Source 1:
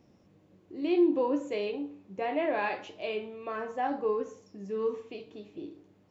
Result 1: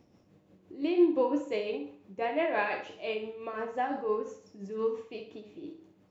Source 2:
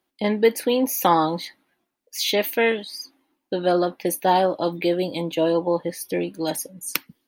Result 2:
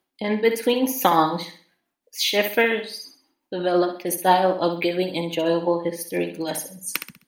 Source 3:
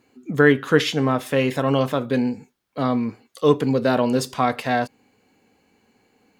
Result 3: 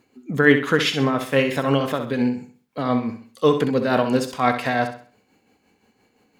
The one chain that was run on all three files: dynamic EQ 1900 Hz, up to +4 dB, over -35 dBFS, Q 0.83; tremolo 5.8 Hz, depth 56%; on a send: flutter echo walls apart 11.1 m, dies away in 0.43 s; on the sum: gain +1.5 dB

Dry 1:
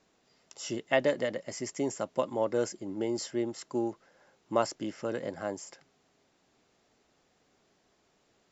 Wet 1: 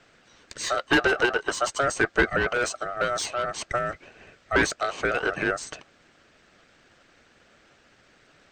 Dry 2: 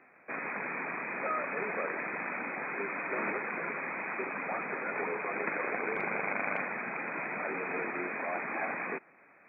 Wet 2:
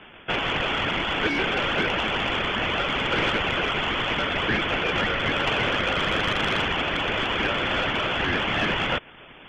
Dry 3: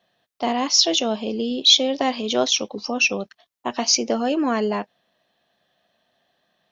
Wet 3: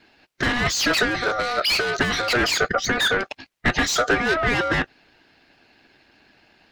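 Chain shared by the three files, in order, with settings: overdrive pedal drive 33 dB, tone 2000 Hz, clips at -1 dBFS; harmonic-percussive split harmonic -9 dB; ring modulator 970 Hz; gain -3.5 dB

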